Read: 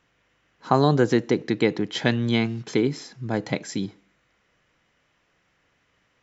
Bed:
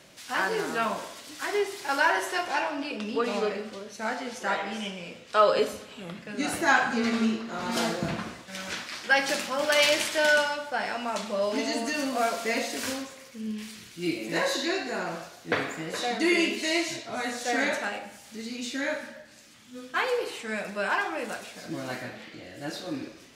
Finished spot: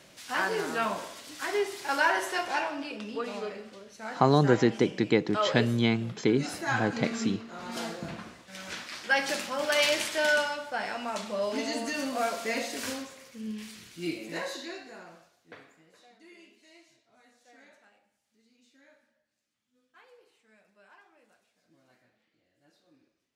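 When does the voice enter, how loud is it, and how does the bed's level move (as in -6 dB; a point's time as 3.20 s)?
3.50 s, -3.0 dB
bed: 2.54 s -1.5 dB
3.39 s -8 dB
8.31 s -8 dB
8.90 s -3 dB
14.00 s -3 dB
16.19 s -30.5 dB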